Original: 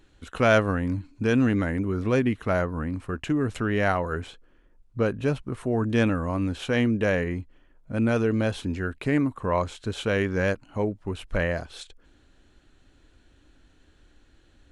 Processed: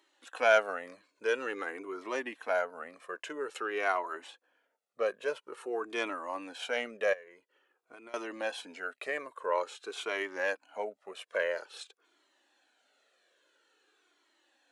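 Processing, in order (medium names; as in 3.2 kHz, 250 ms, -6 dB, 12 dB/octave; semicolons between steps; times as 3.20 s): high-pass 420 Hz 24 dB/octave; 7.13–8.14 s: compression 12:1, threshold -42 dBFS, peak gain reduction 19.5 dB; Shepard-style flanger falling 0.49 Hz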